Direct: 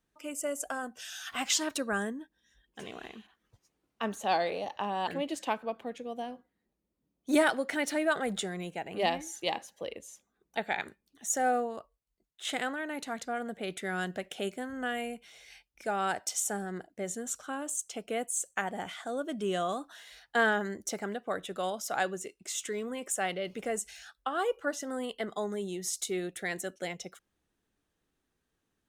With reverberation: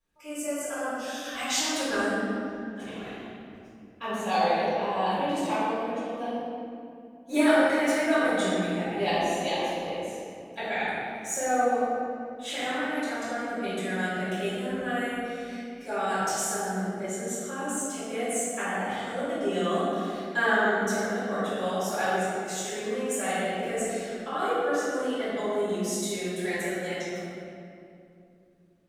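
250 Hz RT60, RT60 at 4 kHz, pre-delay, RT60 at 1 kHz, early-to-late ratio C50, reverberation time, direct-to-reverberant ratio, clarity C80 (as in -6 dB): 3.7 s, 1.6 s, 3 ms, 2.3 s, -4.0 dB, 2.6 s, -14.0 dB, -2.0 dB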